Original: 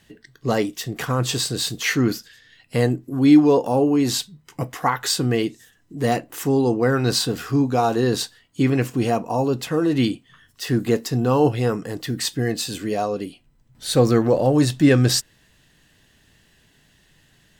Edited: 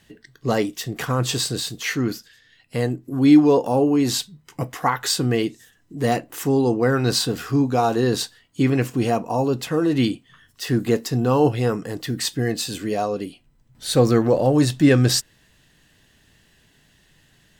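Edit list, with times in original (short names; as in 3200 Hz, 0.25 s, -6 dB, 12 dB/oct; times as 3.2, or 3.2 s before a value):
1.6–3.05 gain -3.5 dB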